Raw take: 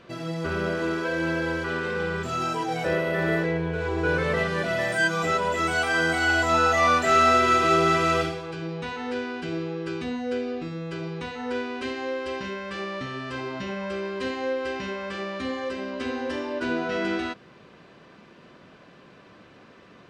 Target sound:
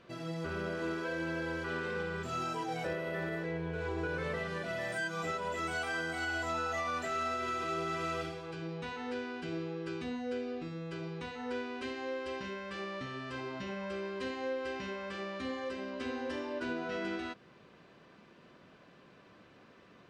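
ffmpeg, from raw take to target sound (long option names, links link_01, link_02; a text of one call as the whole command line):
ffmpeg -i in.wav -af "alimiter=limit=-19dB:level=0:latency=1:release=289,volume=-7.5dB" -ar 48000 -c:a libmp3lame -b:a 128k out.mp3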